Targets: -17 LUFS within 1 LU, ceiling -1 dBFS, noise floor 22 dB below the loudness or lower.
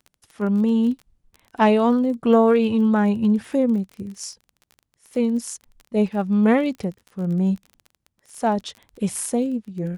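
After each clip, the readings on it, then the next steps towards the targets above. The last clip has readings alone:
ticks 25/s; loudness -21.0 LUFS; peak -3.5 dBFS; loudness target -17.0 LUFS
-> de-click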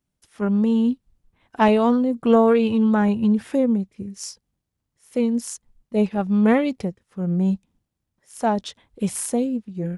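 ticks 0/s; loudness -21.0 LUFS; peak -3.5 dBFS; loudness target -17.0 LUFS
-> gain +4 dB; limiter -1 dBFS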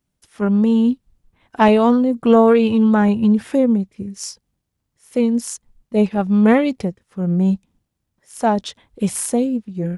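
loudness -17.0 LUFS; peak -1.0 dBFS; noise floor -76 dBFS

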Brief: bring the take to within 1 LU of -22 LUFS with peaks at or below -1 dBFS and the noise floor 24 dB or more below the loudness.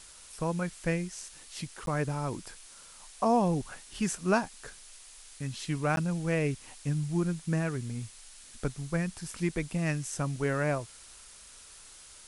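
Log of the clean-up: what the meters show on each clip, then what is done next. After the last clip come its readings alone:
dropouts 2; longest dropout 12 ms; noise floor -52 dBFS; noise floor target -56 dBFS; loudness -32.0 LUFS; peak -12.5 dBFS; loudness target -22.0 LUFS
-> interpolate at 1.86/5.96, 12 ms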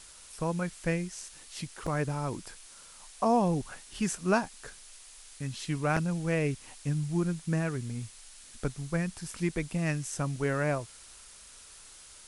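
dropouts 0; noise floor -52 dBFS; noise floor target -56 dBFS
-> denoiser 6 dB, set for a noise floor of -52 dBFS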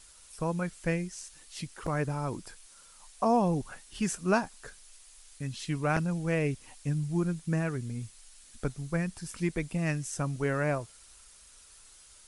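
noise floor -56 dBFS; loudness -32.0 LUFS; peak -13.0 dBFS; loudness target -22.0 LUFS
-> gain +10 dB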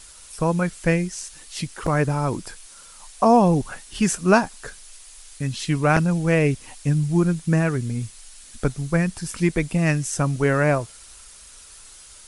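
loudness -22.0 LUFS; peak -3.0 dBFS; noise floor -46 dBFS

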